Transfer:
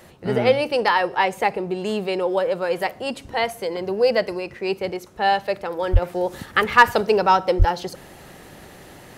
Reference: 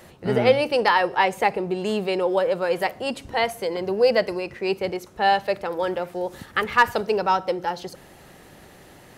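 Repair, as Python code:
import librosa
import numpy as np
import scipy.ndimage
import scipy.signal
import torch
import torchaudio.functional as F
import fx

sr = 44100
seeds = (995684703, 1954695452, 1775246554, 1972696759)

y = fx.highpass(x, sr, hz=140.0, slope=24, at=(5.92, 6.04), fade=0.02)
y = fx.highpass(y, sr, hz=140.0, slope=24, at=(7.58, 7.7), fade=0.02)
y = fx.gain(y, sr, db=fx.steps((0.0, 0.0), (6.02, -4.5)))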